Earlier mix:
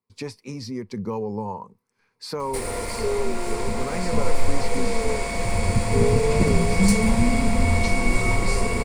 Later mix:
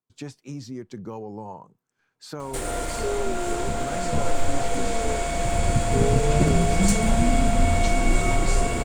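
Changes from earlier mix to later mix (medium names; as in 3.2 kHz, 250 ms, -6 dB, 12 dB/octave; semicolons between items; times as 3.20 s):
speech -4.5 dB; master: remove rippled EQ curve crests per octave 0.89, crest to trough 9 dB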